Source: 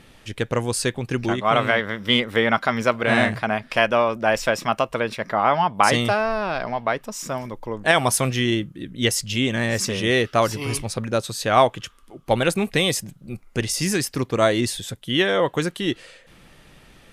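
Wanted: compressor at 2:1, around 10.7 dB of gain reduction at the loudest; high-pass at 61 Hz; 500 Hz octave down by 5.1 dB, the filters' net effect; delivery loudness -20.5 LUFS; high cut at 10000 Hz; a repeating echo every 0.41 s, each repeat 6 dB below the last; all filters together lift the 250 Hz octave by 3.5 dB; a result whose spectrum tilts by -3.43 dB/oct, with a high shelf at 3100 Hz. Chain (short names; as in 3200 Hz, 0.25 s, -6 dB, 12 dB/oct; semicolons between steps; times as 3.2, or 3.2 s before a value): HPF 61 Hz; LPF 10000 Hz; bell 250 Hz +6.5 dB; bell 500 Hz -9 dB; high shelf 3100 Hz +6.5 dB; compressor 2:1, threshold -32 dBFS; feedback echo 0.41 s, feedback 50%, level -6 dB; gain +8 dB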